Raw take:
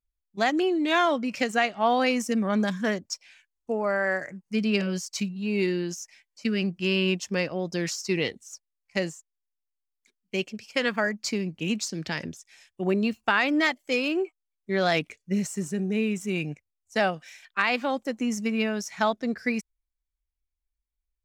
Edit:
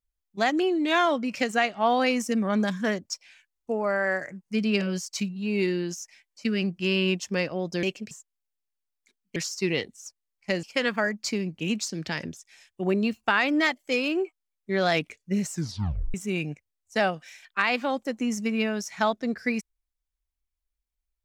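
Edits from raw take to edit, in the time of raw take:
7.83–9.10 s: swap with 10.35–10.63 s
15.50 s: tape stop 0.64 s

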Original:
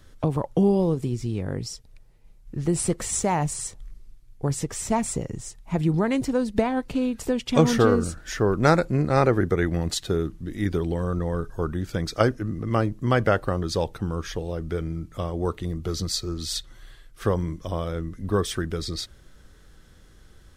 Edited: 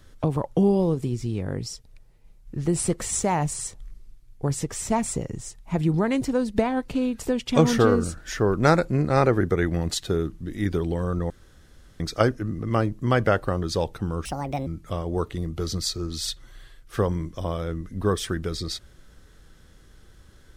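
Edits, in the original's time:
11.30–12.00 s: room tone
14.25–14.94 s: speed 166%

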